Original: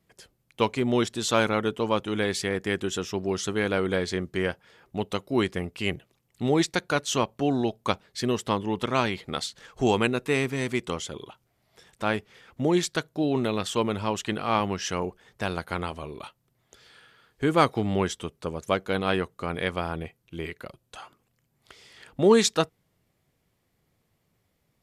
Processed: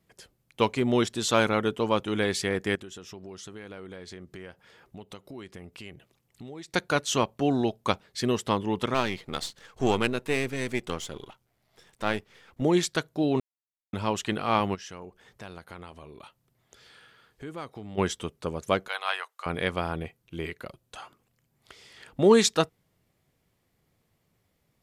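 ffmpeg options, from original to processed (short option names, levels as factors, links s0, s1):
-filter_complex "[0:a]asettb=1/sr,asplit=3[s0][s1][s2];[s0]atrim=end=2.754[s3];[s1]atrim=start=2.75:end=6.74,asetpts=PTS-STARTPTS,afade=t=in:d=0.004:c=qsin,afade=t=out:st=3.986:d=0.004:c=qsin,acompressor=threshold=0.00794:ratio=4:attack=3.2:release=140:knee=1:detection=peak[s4];[s2]atrim=start=6.736[s5];[s3][s4]acrossfade=d=0.004:c1=hsin:c2=qsin[s6];[s6][s5]acrossfade=d=0.004:c1=qsin:c2=hsin,asettb=1/sr,asplit=3[s7][s8][s9];[s7]atrim=end=8.944[s10];[s8]atrim=start=8.94:end=12.62,asetpts=PTS-STARTPTS,afade=t=in:d=0.004:c=qsin,afade=t=out:st=3.676:d=0.004:c=qsin,aeval=exprs='if(lt(val(0),0),0.447*val(0),val(0))':c=same[s11];[s9]atrim=start=12.616[s12];[s10][s11]acrossfade=d=0.004:c1=hsin:c2=qsin[s13];[s13][s12]acrossfade=d=0.004:c1=qsin:c2=hsin,asplit=3[s14][s15][s16];[s14]afade=t=out:st=14.74:d=0.02[s17];[s15]acompressor=threshold=0.00355:ratio=2:attack=3.2:release=140:knee=1:detection=peak,afade=t=in:st=14.74:d=0.02,afade=t=out:st=17.97:d=0.02[s18];[s16]afade=t=in:st=17.97:d=0.02[s19];[s17][s18][s19]amix=inputs=3:normalize=0,asettb=1/sr,asplit=3[s20][s21][s22];[s20]atrim=end=18.884[s23];[s21]atrim=start=18.88:end=19.46,asetpts=PTS-STARTPTS,afade=t=in:d=0.004:c=qsin,afade=t=out:st=0.576:d=0.004:c=qsin,highpass=f=800:w=0.5412,highpass=f=800:w=1.3066[s24];[s22]atrim=start=19.456[s25];[s23][s24]acrossfade=d=0.004:c1=hsin:c2=qsin[s26];[s26][s25]acrossfade=d=0.004:c1=qsin:c2=hsin,asplit=3[s27][s28][s29];[s27]atrim=end=13.4,asetpts=PTS-STARTPTS,afade=t=out:st=13.396:d=0.004:c=hsin[s30];[s28]atrim=start=13.4:end=13.93,asetpts=PTS-STARTPTS,volume=0[s31];[s29]atrim=start=13.93,asetpts=PTS-STARTPTS,afade=t=in:d=0.004:c=hsin[s32];[s30][s31][s32]concat=n=3:v=0:a=1"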